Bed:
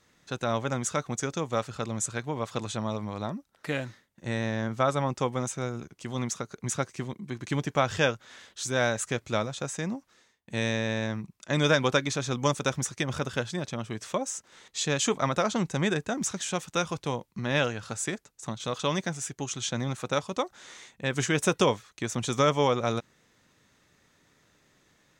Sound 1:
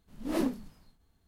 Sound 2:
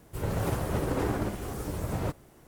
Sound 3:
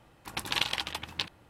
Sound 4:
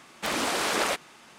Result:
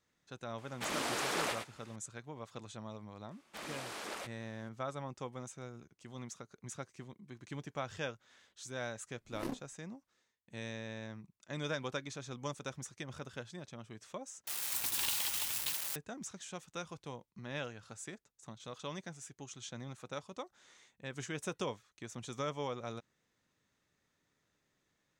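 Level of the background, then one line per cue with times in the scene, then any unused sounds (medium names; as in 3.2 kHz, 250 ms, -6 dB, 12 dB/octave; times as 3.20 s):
bed -15 dB
0.58 s: add 4 -9.5 dB + delay 101 ms -6.5 dB
3.31 s: add 4 -17 dB
9.06 s: add 1 -6 dB + power-law waveshaper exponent 2
14.47 s: replace with 3 -12.5 dB + zero-crossing glitches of -14 dBFS
not used: 2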